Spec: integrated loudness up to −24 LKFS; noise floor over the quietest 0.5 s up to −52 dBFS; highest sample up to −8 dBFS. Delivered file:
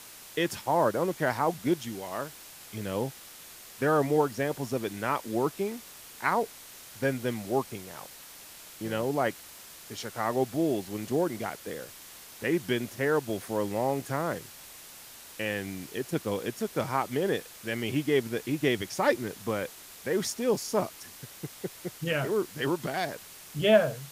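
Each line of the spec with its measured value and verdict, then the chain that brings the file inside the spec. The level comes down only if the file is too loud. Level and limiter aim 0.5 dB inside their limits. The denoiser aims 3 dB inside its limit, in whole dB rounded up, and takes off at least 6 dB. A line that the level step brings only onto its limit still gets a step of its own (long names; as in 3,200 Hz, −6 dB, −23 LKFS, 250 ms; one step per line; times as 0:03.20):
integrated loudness −30.0 LKFS: in spec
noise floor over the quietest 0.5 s −48 dBFS: out of spec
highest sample −9.5 dBFS: in spec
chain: broadband denoise 7 dB, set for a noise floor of −48 dBFS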